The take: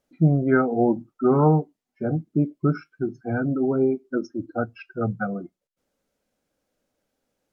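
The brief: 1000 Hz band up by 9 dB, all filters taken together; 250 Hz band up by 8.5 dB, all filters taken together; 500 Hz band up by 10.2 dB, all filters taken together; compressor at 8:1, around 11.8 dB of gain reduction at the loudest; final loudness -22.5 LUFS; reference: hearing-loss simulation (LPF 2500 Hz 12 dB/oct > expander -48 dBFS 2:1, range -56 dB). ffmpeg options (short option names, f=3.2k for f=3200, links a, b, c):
-af "equalizer=f=250:t=o:g=7,equalizer=f=500:t=o:g=9,equalizer=f=1k:t=o:g=8.5,acompressor=threshold=-17dB:ratio=8,lowpass=2.5k,agate=range=-56dB:threshold=-48dB:ratio=2,volume=1dB"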